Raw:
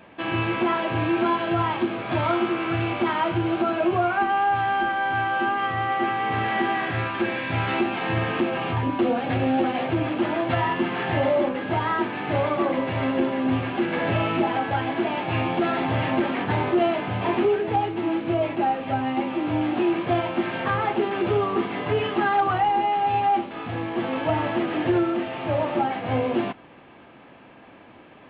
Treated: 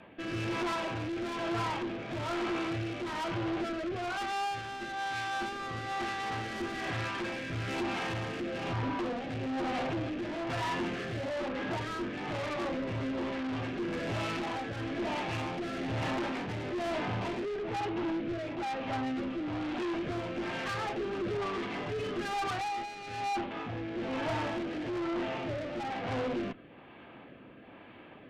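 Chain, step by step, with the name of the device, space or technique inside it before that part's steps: overdriven rotary cabinet (tube stage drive 30 dB, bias 0.3; rotary speaker horn 1.1 Hz)

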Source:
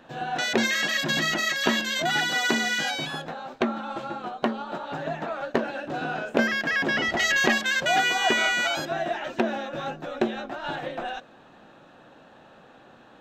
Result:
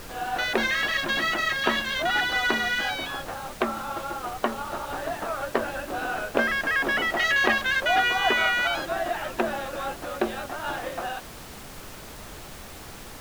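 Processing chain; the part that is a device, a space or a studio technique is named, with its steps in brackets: horn gramophone (BPF 300–4000 Hz; bell 1200 Hz +5 dB 0.44 oct; wow and flutter 17 cents; pink noise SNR 14 dB)

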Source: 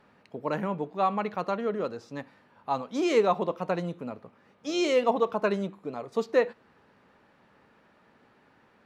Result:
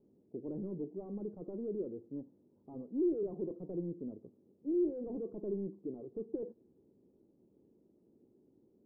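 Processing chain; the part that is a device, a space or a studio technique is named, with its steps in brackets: overdriven synthesiser ladder filter (soft clip -29 dBFS, distortion -6 dB; ladder low-pass 400 Hz, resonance 60%); gain +3 dB

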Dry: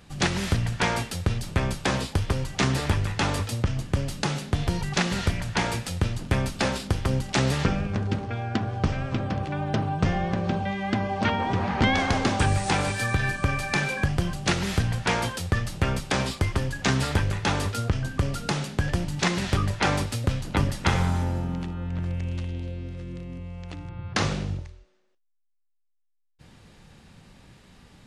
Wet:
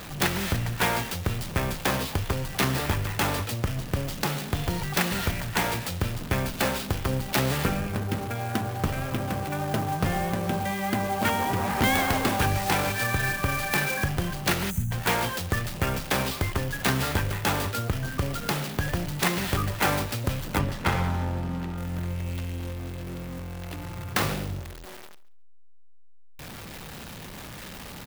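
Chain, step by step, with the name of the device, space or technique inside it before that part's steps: early CD player with a faulty converter (zero-crossing step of -33.5 dBFS; clock jitter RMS 0.033 ms); low shelf 310 Hz -5 dB; 14.7–14.91 spectral gain 250–5900 Hz -24 dB; 20.59–21.78 high shelf 5800 Hz -11 dB; feedback echo 0.138 s, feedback 15%, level -20 dB

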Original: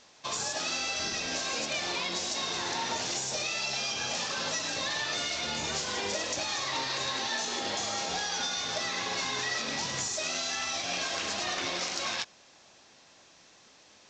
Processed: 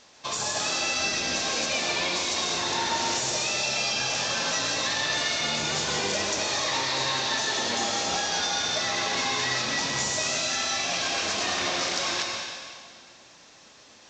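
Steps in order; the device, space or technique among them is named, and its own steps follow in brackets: stairwell (reverb RT60 1.9 s, pre-delay 0.117 s, DRR 1.5 dB); gain +3 dB

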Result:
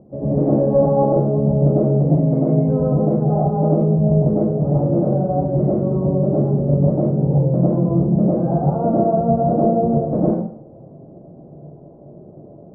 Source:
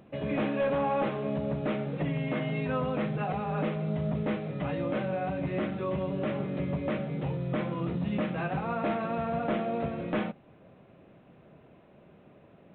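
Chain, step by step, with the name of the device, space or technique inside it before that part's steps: next room (LPF 660 Hz 24 dB/oct; reverb RT60 0.50 s, pre-delay 92 ms, DRR -6 dB); gain +8 dB

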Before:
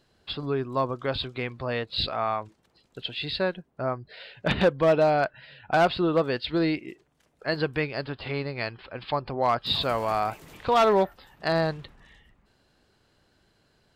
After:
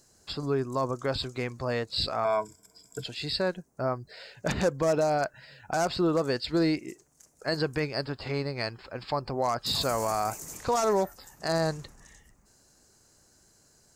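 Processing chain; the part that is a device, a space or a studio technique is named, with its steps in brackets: 2.24–3.04 ripple EQ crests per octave 1.7, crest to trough 17 dB; over-bright horn tweeter (resonant high shelf 4700 Hz +12.5 dB, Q 3; limiter -17.5 dBFS, peak gain reduction 9.5 dB)

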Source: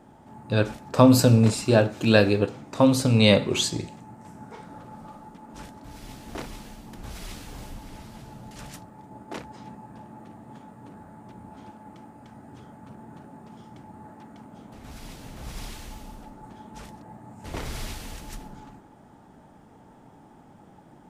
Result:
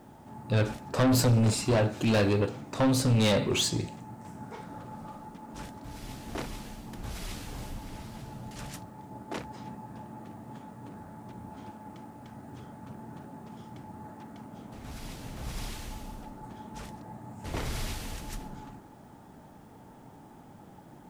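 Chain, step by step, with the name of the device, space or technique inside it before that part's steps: open-reel tape (soft clip -20.5 dBFS, distortion -6 dB; bell 110 Hz +2.5 dB; white noise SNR 39 dB)

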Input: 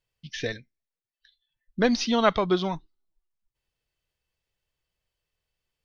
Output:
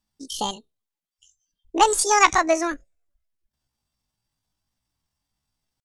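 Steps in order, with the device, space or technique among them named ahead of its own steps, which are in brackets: 1.82–2.48 graphic EQ 250/500/4000 Hz -5/+6/+7 dB; chipmunk voice (pitch shift +10 st); gain +3.5 dB

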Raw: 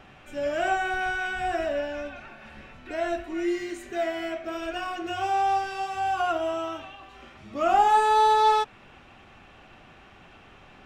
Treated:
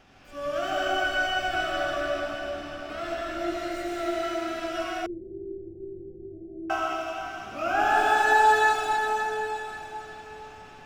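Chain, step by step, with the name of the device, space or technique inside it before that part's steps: shimmer-style reverb (harmoniser +12 st -6 dB; reverb RT60 4.8 s, pre-delay 85 ms, DRR -5.5 dB); 5.06–6.7 steep low-pass 520 Hz 96 dB/oct; gain -7.5 dB

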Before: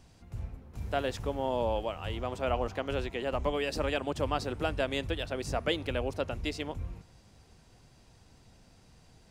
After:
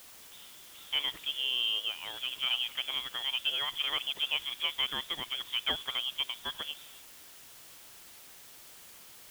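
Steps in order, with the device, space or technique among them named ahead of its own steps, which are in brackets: scrambled radio voice (BPF 340–2900 Hz; inverted band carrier 3700 Hz; white noise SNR 16 dB)

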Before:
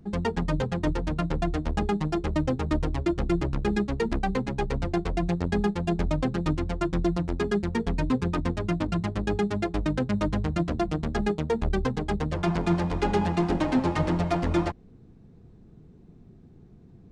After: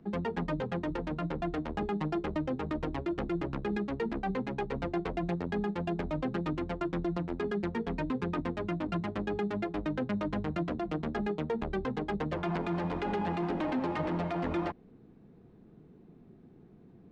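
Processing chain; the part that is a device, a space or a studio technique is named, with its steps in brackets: DJ mixer with the lows and highs turned down (three-band isolator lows -13 dB, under 170 Hz, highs -15 dB, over 3700 Hz; limiter -24 dBFS, peak gain reduction 11 dB)

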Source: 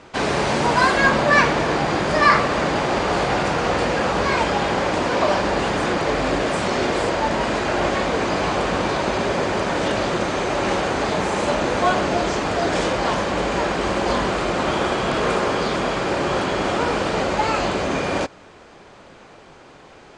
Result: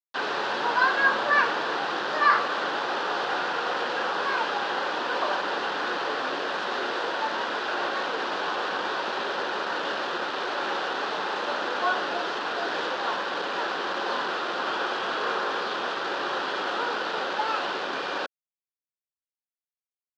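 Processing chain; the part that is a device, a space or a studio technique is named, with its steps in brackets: hand-held game console (bit-crush 4-bit; speaker cabinet 490–4100 Hz, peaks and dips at 630 Hz -6 dB, 1500 Hz +5 dB, 2200 Hz -10 dB); gain -5 dB

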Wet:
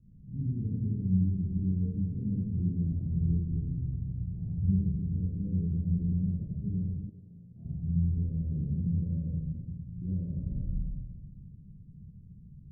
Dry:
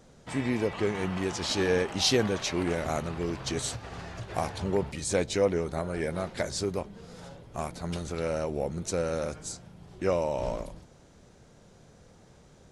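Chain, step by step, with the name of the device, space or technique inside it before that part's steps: club heard from the street (limiter -22 dBFS, peak gain reduction 10 dB; LPF 180 Hz 24 dB/oct; reverb RT60 1.6 s, pre-delay 23 ms, DRR -7 dB); 7.09–7.65 RIAA curve recording

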